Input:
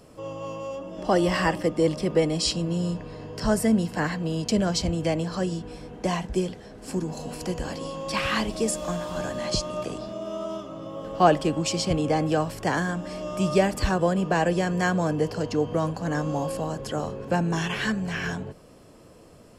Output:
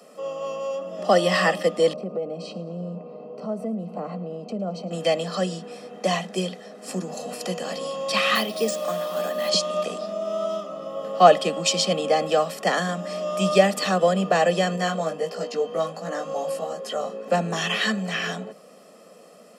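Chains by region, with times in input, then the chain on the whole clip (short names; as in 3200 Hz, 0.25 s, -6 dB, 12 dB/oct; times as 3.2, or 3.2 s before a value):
1.93–4.91 running mean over 25 samples + compressor 4:1, threshold -27 dBFS + feedback echo 0.11 s, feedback 54%, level -19 dB
8.35–9.49 Chebyshev high-pass 250 Hz + careless resampling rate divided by 3×, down filtered, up hold
14.76–17.26 low shelf 90 Hz -10.5 dB + chorus 1.5 Hz, delay 16.5 ms, depth 2.4 ms
whole clip: steep high-pass 180 Hz 72 dB/oct; comb 1.6 ms, depth 68%; dynamic EQ 3500 Hz, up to +6 dB, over -46 dBFS, Q 1.8; gain +2 dB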